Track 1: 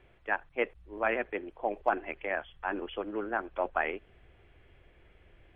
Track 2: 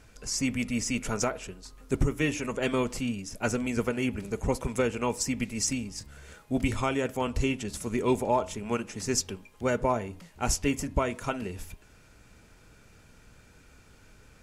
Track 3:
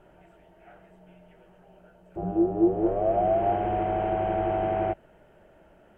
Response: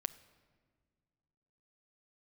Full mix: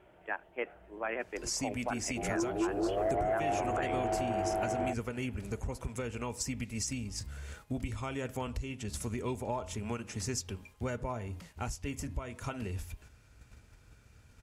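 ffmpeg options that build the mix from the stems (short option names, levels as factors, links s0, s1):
-filter_complex "[0:a]volume=0.596[s0];[1:a]agate=range=0.447:threshold=0.00224:ratio=16:detection=peak,asubboost=boost=2.5:cutoff=170,acompressor=threshold=0.0251:ratio=5,adelay=1200,volume=1[s1];[2:a]aeval=exprs='0.282*sin(PI/2*1.78*val(0)/0.282)':c=same,volume=0.211[s2];[s0][s1][s2]amix=inputs=3:normalize=0,highpass=48,equalizer=f=170:w=4:g=-6.5,alimiter=limit=0.0708:level=0:latency=1:release=97"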